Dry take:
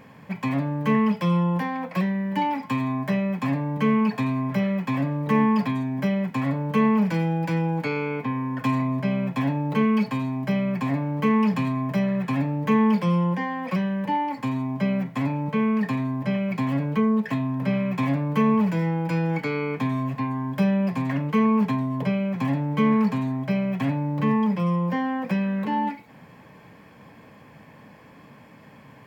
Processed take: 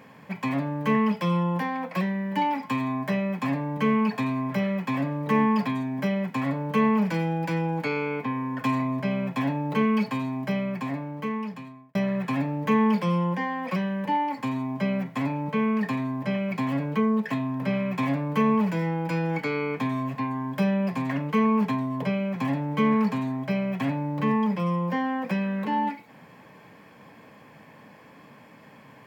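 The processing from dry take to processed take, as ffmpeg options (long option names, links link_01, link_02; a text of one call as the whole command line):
ffmpeg -i in.wav -filter_complex "[0:a]asplit=2[link_01][link_02];[link_01]atrim=end=11.95,asetpts=PTS-STARTPTS,afade=type=out:start_time=10.38:duration=1.57[link_03];[link_02]atrim=start=11.95,asetpts=PTS-STARTPTS,afade=type=in:duration=0.004:curve=hsin[link_04];[link_03][link_04]concat=n=2:v=0:a=1,highpass=frequency=190:poles=1" out.wav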